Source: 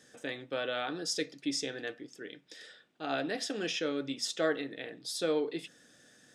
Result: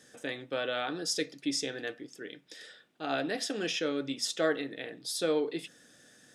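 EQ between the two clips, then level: bell 11000 Hz +5 dB 0.49 oct; +1.5 dB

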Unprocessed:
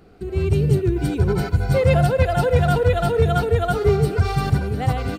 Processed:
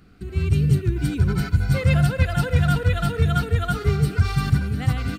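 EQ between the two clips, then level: band shelf 580 Hz -11 dB; 0.0 dB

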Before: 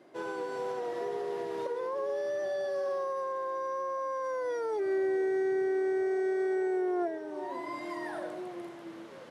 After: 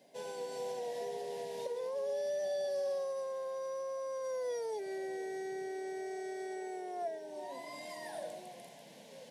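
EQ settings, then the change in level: high shelf 3700 Hz +10.5 dB; fixed phaser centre 340 Hz, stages 6; -2.5 dB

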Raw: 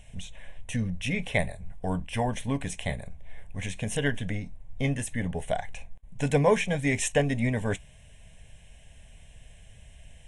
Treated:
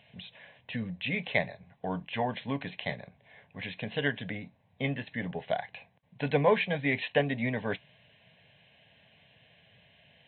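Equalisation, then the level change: HPF 120 Hz 24 dB/oct; brick-wall FIR low-pass 4200 Hz; low shelf 400 Hz -5.5 dB; 0.0 dB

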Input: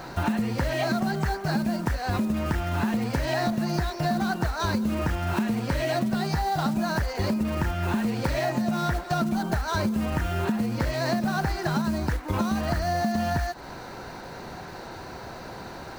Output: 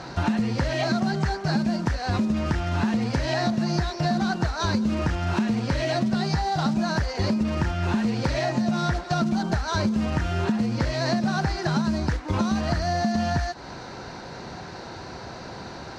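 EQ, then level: HPF 110 Hz 6 dB/oct; synth low-pass 5600 Hz, resonance Q 1.6; low shelf 180 Hz +8 dB; 0.0 dB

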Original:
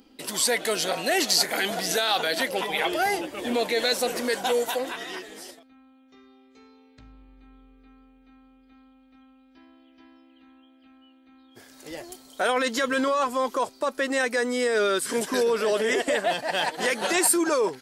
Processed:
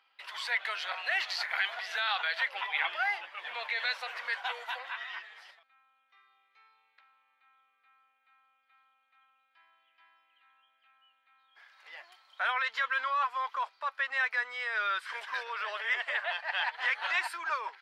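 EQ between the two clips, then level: HPF 1000 Hz 24 dB/oct; air absorption 360 m; bell 2200 Hz +2.5 dB; 0.0 dB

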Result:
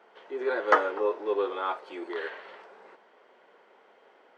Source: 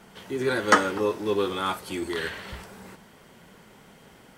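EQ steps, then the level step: HPF 410 Hz 24 dB/oct; tape spacing loss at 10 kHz 35 dB; dynamic EQ 680 Hz, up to +3 dB, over -42 dBFS, Q 0.73; 0.0 dB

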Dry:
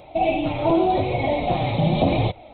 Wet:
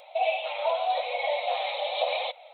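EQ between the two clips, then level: brick-wall FIR high-pass 470 Hz; high shelf 2900 Hz +11.5 dB; -5.5 dB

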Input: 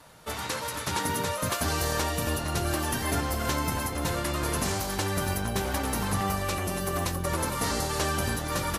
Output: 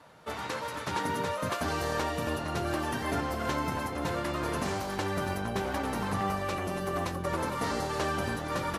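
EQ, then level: HPF 160 Hz 6 dB/oct; LPF 2100 Hz 6 dB/oct; 0.0 dB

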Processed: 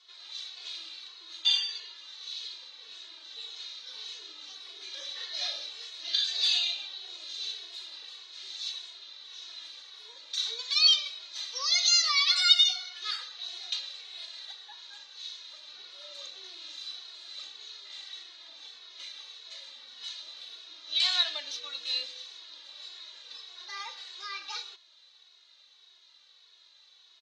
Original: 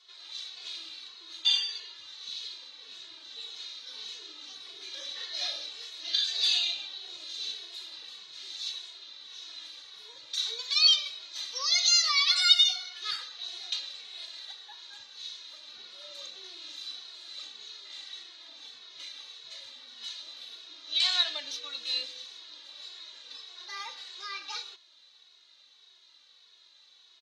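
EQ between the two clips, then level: HPF 350 Hz 12 dB/oct; LPF 8700 Hz 12 dB/oct; 0.0 dB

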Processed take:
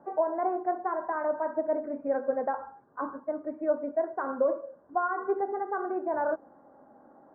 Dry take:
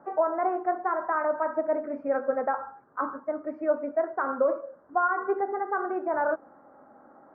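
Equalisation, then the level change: air absorption 390 m; high shelf 2300 Hz -8 dB; notch 1300 Hz, Q 8.1; 0.0 dB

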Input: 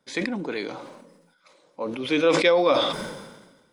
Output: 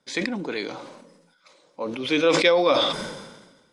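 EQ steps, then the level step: LPF 6900 Hz 12 dB/oct; high shelf 4500 Hz +9 dB; 0.0 dB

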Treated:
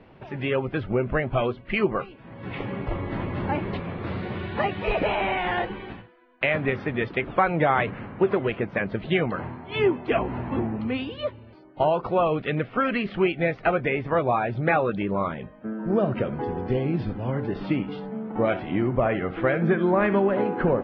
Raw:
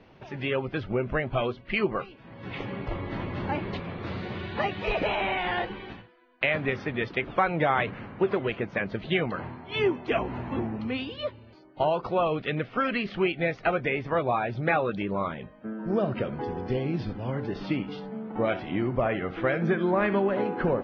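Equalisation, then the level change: air absorption 230 m; +4.0 dB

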